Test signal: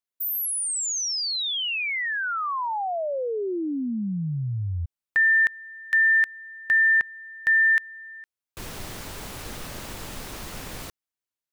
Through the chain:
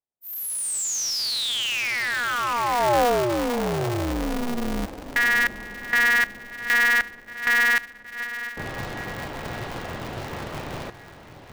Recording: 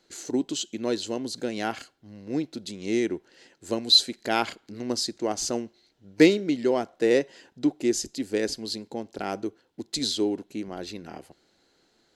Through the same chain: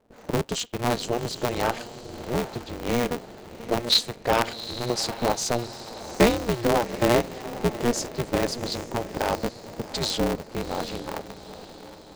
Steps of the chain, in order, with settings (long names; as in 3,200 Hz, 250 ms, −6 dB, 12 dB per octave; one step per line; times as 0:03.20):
in parallel at +3 dB: downward compressor 10 to 1, threshold −28 dBFS
on the sum: parametric band 660 Hz +8 dB 0.77 octaves
low-pass that shuts in the quiet parts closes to 570 Hz, open at −18 dBFS
feedback delay with all-pass diffusion 777 ms, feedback 49%, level −13 dB
ring modulator with a square carrier 120 Hz
level −5 dB